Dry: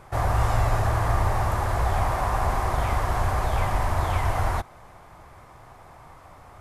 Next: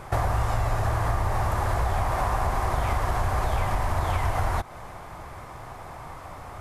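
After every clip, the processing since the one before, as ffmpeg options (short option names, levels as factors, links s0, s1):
-af "acompressor=threshold=0.0355:ratio=6,volume=2.37"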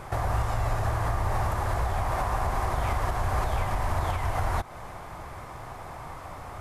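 -af "alimiter=limit=0.141:level=0:latency=1:release=278"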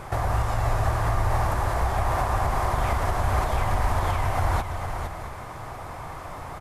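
-af "aecho=1:1:462|674:0.447|0.2,volume=1.33"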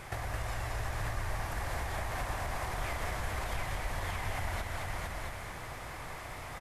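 -filter_complex "[0:a]acompressor=threshold=0.0562:ratio=6,highshelf=f=1500:t=q:w=1.5:g=6.5,asplit=7[s0][s1][s2][s3][s4][s5][s6];[s1]adelay=219,afreqshift=-62,volume=0.631[s7];[s2]adelay=438,afreqshift=-124,volume=0.292[s8];[s3]adelay=657,afreqshift=-186,volume=0.133[s9];[s4]adelay=876,afreqshift=-248,volume=0.0617[s10];[s5]adelay=1095,afreqshift=-310,volume=0.0282[s11];[s6]adelay=1314,afreqshift=-372,volume=0.013[s12];[s0][s7][s8][s9][s10][s11][s12]amix=inputs=7:normalize=0,volume=0.376"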